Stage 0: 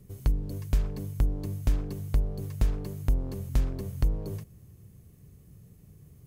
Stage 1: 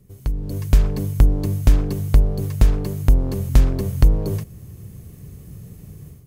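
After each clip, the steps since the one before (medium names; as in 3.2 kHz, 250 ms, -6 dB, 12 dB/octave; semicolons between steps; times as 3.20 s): level rider gain up to 14 dB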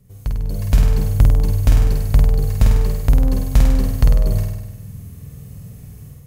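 peaking EQ 340 Hz -13.5 dB 0.33 oct; flutter echo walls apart 8.5 m, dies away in 1 s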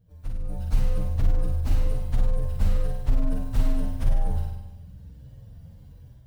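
frequency axis rescaled in octaves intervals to 126%; loudspeaker Doppler distortion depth 0.32 ms; trim -6 dB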